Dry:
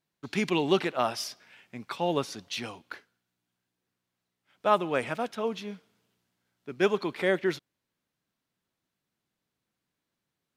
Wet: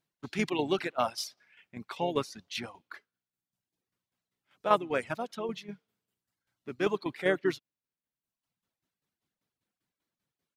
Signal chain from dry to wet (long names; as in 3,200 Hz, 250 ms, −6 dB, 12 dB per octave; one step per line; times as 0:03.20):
shaped tremolo saw down 5.1 Hz, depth 55%
pitch-shifted copies added −4 semitones −12 dB
reverb reduction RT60 1 s